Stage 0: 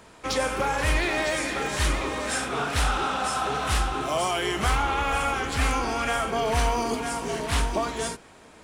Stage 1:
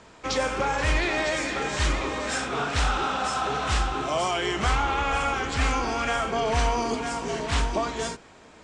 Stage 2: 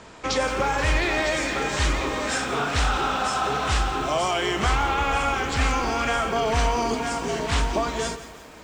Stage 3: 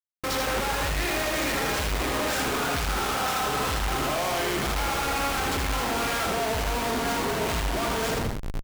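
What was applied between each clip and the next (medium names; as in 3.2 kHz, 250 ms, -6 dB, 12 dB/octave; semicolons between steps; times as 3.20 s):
steep low-pass 8 kHz 36 dB/octave
in parallel at -1.5 dB: compression, threshold -34 dBFS, peak gain reduction 14 dB; on the sum: bit-crushed delay 173 ms, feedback 55%, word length 7-bit, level -14 dB
Schmitt trigger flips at -34 dBFS; delay 79 ms -4 dB; trim -4 dB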